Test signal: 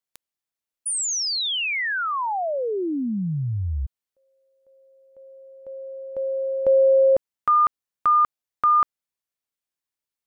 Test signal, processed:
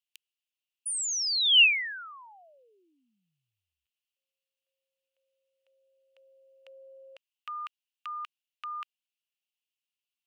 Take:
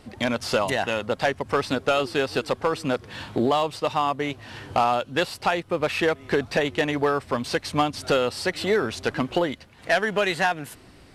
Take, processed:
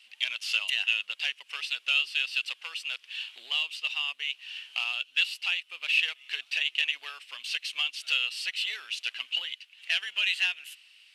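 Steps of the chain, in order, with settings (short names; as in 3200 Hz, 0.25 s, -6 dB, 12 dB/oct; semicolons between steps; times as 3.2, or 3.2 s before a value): resonant high-pass 2800 Hz, resonance Q 6.6; gain -7 dB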